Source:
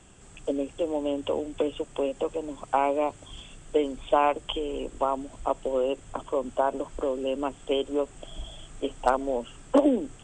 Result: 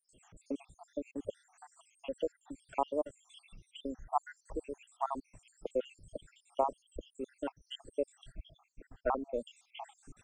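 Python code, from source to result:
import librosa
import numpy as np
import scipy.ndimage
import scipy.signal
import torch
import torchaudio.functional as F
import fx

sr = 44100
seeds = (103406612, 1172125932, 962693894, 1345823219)

y = fx.spec_dropout(x, sr, seeds[0], share_pct=76)
y = fx.lowpass(y, sr, hz=2500.0, slope=12, at=(8.32, 9.34))
y = fx.dereverb_blind(y, sr, rt60_s=1.4)
y = y * 10.0 ** (-4.5 / 20.0)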